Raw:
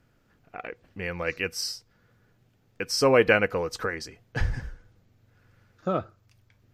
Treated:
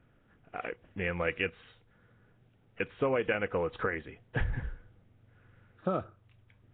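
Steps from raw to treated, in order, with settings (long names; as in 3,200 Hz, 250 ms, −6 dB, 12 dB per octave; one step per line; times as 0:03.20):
downward compressor 12 to 1, threshold −25 dBFS, peak gain reduction 12 dB
Nellymoser 16 kbit/s 8,000 Hz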